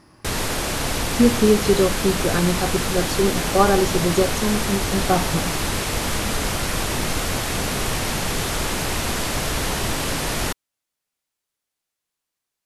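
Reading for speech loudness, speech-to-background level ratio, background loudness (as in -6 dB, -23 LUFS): -21.0 LUFS, 2.5 dB, -23.5 LUFS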